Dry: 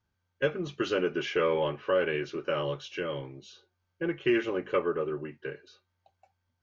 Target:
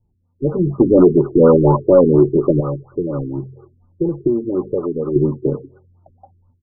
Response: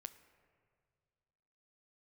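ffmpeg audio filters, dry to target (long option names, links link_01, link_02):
-filter_complex "[0:a]equalizer=frequency=67:width=1.9:gain=-6,bandreject=frequency=66.02:width_type=h:width=4,bandreject=frequency=132.04:width_type=h:width=4,dynaudnorm=framelen=450:gausssize=3:maxgain=12dB,acrossover=split=840|3400[link_01][link_02][link_03];[link_02]adelay=90[link_04];[link_03]adelay=360[link_05];[link_01][link_04][link_05]amix=inputs=3:normalize=0,asettb=1/sr,asplit=3[link_06][link_07][link_08];[link_06]atrim=end=2.604[link_09];[link_07]atrim=start=2.6:end=5.16,asetpts=PTS-STARTPTS,afade=type=in:duration=0.004:curve=qsin,afade=type=out:start_time=2.556:duration=0.004:curve=qsin,acompressor=threshold=-33dB:ratio=2.5[link_10];[link_08]atrim=start=5.156[link_11];[link_09][link_10]acrossfade=duration=0.004:curve1=hsin:curve2=qsin[link_12];[link_12][link_11]acrossfade=duration=0.004:curve1=qsin:curve2=hsin,tiltshelf=frequency=910:gain=9.5,aecho=1:1:1:0.4,asoftclip=type=tanh:threshold=-7.5dB,flanger=delay=1.8:depth=2.5:regen=43:speed=1.7:shape=triangular,alimiter=level_in=12dB:limit=-1dB:release=50:level=0:latency=1,afftfilt=real='re*lt(b*sr/1024,420*pow(1500/420,0.5+0.5*sin(2*PI*4.2*pts/sr)))':imag='im*lt(b*sr/1024,420*pow(1500/420,0.5+0.5*sin(2*PI*4.2*pts/sr)))':win_size=1024:overlap=0.75,volume=-1dB"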